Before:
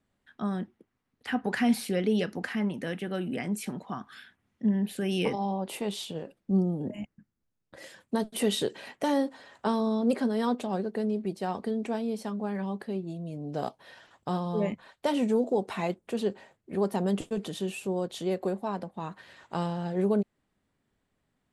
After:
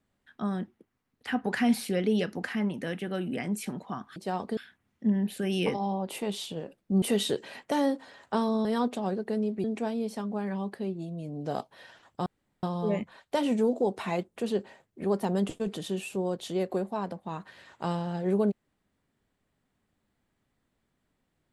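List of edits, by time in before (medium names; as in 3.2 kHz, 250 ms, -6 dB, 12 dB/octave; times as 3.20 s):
6.61–8.34 s: delete
9.97–10.32 s: delete
11.31–11.72 s: move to 4.16 s
14.34 s: insert room tone 0.37 s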